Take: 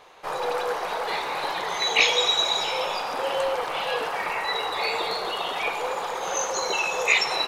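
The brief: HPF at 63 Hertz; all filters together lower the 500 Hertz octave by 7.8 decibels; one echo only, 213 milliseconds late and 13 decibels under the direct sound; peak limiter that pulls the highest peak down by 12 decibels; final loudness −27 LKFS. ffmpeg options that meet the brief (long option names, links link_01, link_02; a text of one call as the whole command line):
ffmpeg -i in.wav -af "highpass=63,equalizer=frequency=500:width_type=o:gain=-9,alimiter=limit=-18dB:level=0:latency=1,aecho=1:1:213:0.224,volume=0.5dB" out.wav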